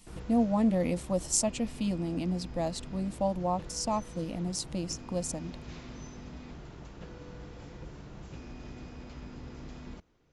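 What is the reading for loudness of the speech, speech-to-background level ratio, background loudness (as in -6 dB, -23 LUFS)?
-31.5 LUFS, 14.5 dB, -46.0 LUFS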